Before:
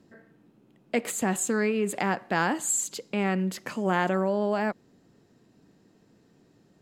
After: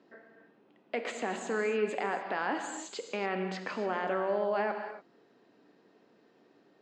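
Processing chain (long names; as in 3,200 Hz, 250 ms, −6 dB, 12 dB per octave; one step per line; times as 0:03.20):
brickwall limiter −21.5 dBFS, peak gain reduction 11 dB
band-pass filter 390–7,800 Hz
high-frequency loss of the air 180 metres
reverb whose tail is shaped and stops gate 310 ms flat, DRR 5.5 dB
level +2.5 dB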